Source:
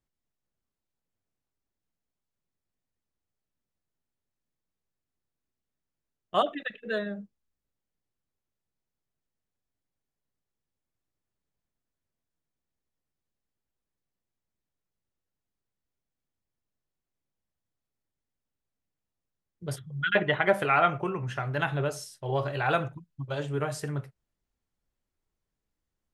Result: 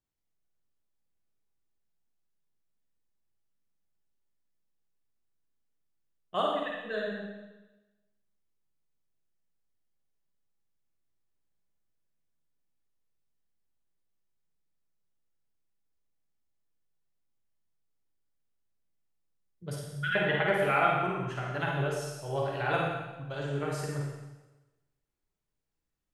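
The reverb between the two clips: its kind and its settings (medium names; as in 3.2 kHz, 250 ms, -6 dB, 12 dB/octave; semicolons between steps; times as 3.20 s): Schroeder reverb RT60 1.1 s, DRR -2 dB; trim -6 dB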